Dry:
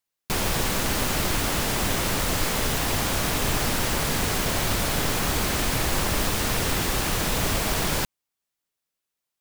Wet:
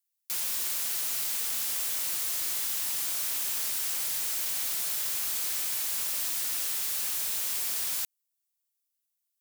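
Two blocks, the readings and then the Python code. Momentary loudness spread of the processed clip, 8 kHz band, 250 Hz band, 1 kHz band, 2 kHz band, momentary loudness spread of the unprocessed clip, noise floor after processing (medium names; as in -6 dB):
0 LU, -2.0 dB, under -25 dB, -18.5 dB, -13.5 dB, 0 LU, -82 dBFS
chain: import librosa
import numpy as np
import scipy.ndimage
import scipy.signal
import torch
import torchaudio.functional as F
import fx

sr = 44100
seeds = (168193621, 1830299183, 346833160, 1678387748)

y = np.diff(x, prepend=0.0)
y = 10.0 ** (-25.5 / 20.0) * np.tanh(y / 10.0 ** (-25.5 / 20.0))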